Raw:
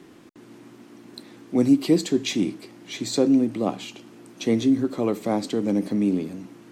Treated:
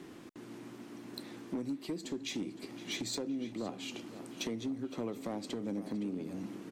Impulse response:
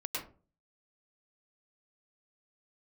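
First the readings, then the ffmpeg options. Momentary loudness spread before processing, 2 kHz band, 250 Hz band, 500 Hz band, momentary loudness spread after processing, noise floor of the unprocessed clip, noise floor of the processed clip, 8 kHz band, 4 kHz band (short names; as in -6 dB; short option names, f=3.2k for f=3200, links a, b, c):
16 LU, -9.0 dB, -16.0 dB, -16.0 dB, 12 LU, -49 dBFS, -51 dBFS, -9.5 dB, -9.0 dB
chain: -filter_complex "[0:a]acompressor=threshold=-32dB:ratio=16,volume=29dB,asoftclip=hard,volume=-29dB,asplit=2[a][b];[b]adelay=514,lowpass=f=3.4k:p=1,volume=-12.5dB,asplit=2[c][d];[d]adelay=514,lowpass=f=3.4k:p=1,volume=0.52,asplit=2[e][f];[f]adelay=514,lowpass=f=3.4k:p=1,volume=0.52,asplit=2[g][h];[h]adelay=514,lowpass=f=3.4k:p=1,volume=0.52,asplit=2[i][j];[j]adelay=514,lowpass=f=3.4k:p=1,volume=0.52[k];[c][e][g][i][k]amix=inputs=5:normalize=0[l];[a][l]amix=inputs=2:normalize=0,volume=-1.5dB"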